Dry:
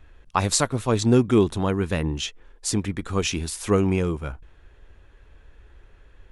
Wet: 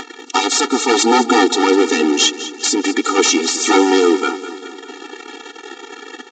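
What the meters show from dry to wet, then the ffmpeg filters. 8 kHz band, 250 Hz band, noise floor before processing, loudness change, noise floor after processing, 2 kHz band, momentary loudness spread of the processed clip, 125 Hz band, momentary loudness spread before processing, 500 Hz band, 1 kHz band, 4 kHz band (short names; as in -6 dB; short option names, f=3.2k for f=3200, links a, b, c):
+11.5 dB, +7.5 dB, -53 dBFS, +9.0 dB, -38 dBFS, +14.0 dB, 21 LU, under -25 dB, 11 LU, +9.0 dB, +13.5 dB, +14.5 dB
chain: -af "aemphasis=mode=production:type=75fm,agate=range=-6dB:threshold=-45dB:ratio=16:detection=peak,equalizer=f=790:w=0.74:g=2.5,acompressor=mode=upward:threshold=-25dB:ratio=2.5,alimiter=limit=-8dB:level=0:latency=1:release=181,aeval=exprs='0.398*sin(PI/2*3.98*val(0)/0.398)':c=same,acrusher=bits=6:mix=0:aa=0.000001,aeval=exprs='0.398*(cos(1*acos(clip(val(0)/0.398,-1,1)))-cos(1*PI/2))+0.0251*(cos(7*acos(clip(val(0)/0.398,-1,1)))-cos(7*PI/2))+0.0355*(cos(8*acos(clip(val(0)/0.398,-1,1)))-cos(8*PI/2))':c=same,aresample=16000,aresample=44100,aecho=1:1:203|406|609|812|1015|1218:0.2|0.114|0.0648|0.037|0.0211|0.012,afftfilt=real='re*eq(mod(floor(b*sr/1024/240),2),1)':imag='im*eq(mod(floor(b*sr/1024/240),2),1)':win_size=1024:overlap=0.75,volume=3dB"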